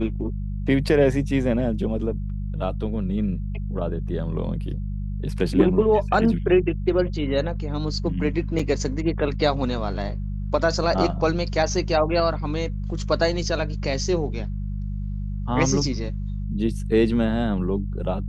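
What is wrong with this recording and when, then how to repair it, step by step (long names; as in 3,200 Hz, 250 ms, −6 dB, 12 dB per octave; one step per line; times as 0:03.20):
mains hum 50 Hz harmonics 4 −28 dBFS
0:08.59: drop-out 4.1 ms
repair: hum removal 50 Hz, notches 4
repair the gap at 0:08.59, 4.1 ms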